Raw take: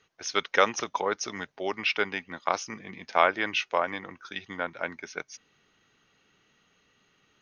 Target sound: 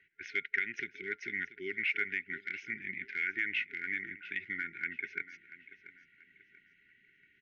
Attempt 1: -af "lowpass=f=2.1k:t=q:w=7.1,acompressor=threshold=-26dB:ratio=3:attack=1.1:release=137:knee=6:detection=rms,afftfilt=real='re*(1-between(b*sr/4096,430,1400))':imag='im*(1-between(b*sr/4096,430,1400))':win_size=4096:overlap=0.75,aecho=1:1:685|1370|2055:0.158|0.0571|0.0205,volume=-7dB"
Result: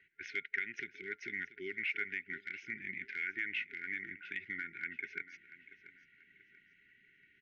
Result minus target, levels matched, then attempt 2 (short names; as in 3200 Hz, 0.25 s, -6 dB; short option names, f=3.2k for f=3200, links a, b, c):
compressor: peak gain reduction +4.5 dB
-af "lowpass=f=2.1k:t=q:w=7.1,acompressor=threshold=-19.5dB:ratio=3:attack=1.1:release=137:knee=6:detection=rms,afftfilt=real='re*(1-between(b*sr/4096,430,1400))':imag='im*(1-between(b*sr/4096,430,1400))':win_size=4096:overlap=0.75,aecho=1:1:685|1370|2055:0.158|0.0571|0.0205,volume=-7dB"